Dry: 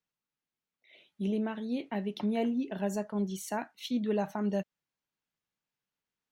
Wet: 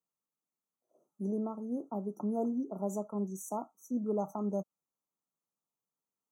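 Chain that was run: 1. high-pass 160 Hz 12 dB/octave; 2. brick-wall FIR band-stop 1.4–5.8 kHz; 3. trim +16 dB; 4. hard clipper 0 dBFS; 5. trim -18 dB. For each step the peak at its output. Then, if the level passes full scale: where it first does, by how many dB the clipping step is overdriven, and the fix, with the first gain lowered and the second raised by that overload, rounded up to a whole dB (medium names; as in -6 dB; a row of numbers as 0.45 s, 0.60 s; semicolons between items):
-20.5 dBFS, -20.5 dBFS, -4.5 dBFS, -4.5 dBFS, -22.5 dBFS; nothing clips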